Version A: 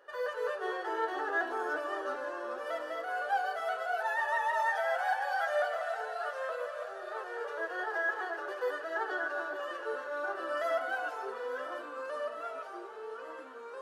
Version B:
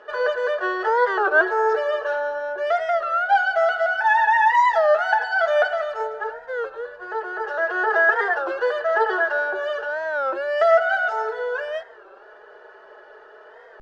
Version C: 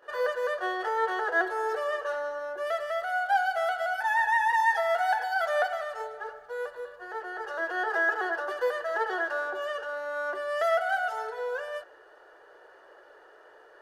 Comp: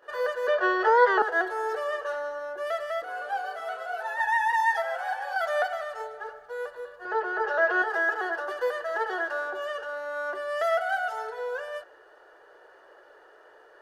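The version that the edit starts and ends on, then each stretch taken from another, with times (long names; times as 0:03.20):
C
0:00.48–0:01.22: punch in from B
0:03.02–0:04.20: punch in from A
0:04.82–0:05.36: punch in from A
0:07.05–0:07.82: punch in from B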